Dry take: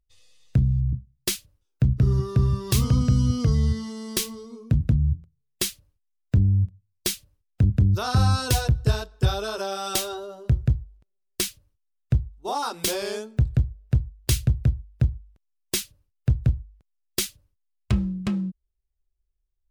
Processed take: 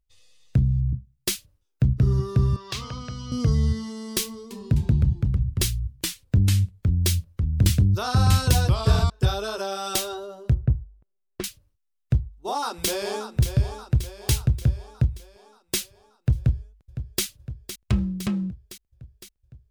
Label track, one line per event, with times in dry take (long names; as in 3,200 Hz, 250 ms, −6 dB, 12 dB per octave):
2.560000	3.320000	three-way crossover with the lows and the highs turned down lows −16 dB, under 580 Hz, highs −21 dB, over 5,700 Hz
4.250000	9.100000	delay with pitch and tempo change per echo 256 ms, each echo −2 semitones, echoes 2
10.540000	11.440000	low-pass filter 1,400 Hz
12.200000	13.250000	delay throw 580 ms, feedback 55%, level −9.5 dB
16.370000	17.240000	delay throw 510 ms, feedback 70%, level −11 dB